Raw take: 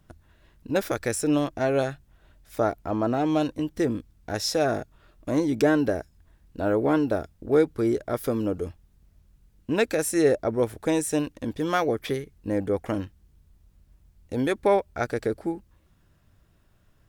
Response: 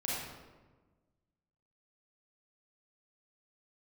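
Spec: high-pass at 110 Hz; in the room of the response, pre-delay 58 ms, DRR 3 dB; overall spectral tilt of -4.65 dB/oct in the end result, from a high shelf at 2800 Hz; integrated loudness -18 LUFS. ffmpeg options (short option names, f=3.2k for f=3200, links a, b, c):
-filter_complex "[0:a]highpass=110,highshelf=f=2.8k:g=-8.5,asplit=2[a][b];[1:a]atrim=start_sample=2205,adelay=58[c];[b][c]afir=irnorm=-1:irlink=0,volume=-7.5dB[d];[a][d]amix=inputs=2:normalize=0,volume=7dB"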